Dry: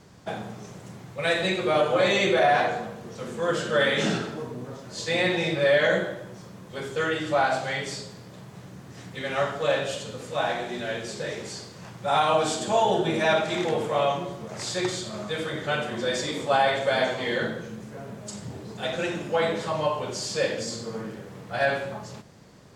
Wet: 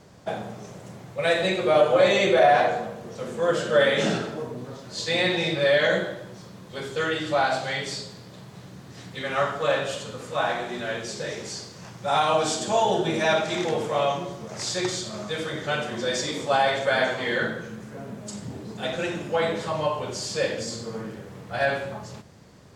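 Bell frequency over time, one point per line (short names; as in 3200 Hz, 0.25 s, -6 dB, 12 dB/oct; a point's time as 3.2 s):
bell +5 dB 0.7 oct
590 Hz
from 4.57 s 4100 Hz
from 9.23 s 1200 Hz
from 11.03 s 5700 Hz
from 16.85 s 1500 Hz
from 17.93 s 250 Hz
from 18.93 s 80 Hz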